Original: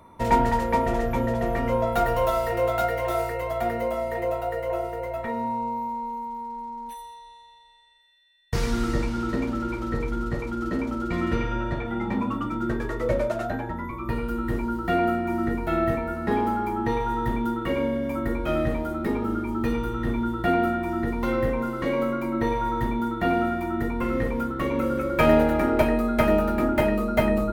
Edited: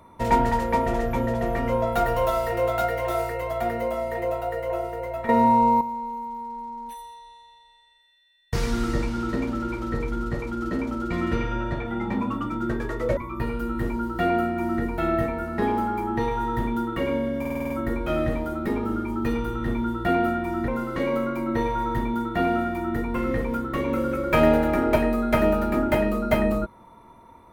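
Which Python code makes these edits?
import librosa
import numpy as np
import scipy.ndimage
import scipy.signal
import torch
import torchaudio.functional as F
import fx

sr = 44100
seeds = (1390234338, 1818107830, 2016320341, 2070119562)

y = fx.edit(x, sr, fx.clip_gain(start_s=5.29, length_s=0.52, db=10.5),
    fx.cut(start_s=13.17, length_s=0.69),
    fx.stutter(start_s=18.09, slice_s=0.05, count=7),
    fx.cut(start_s=21.07, length_s=0.47), tone=tone)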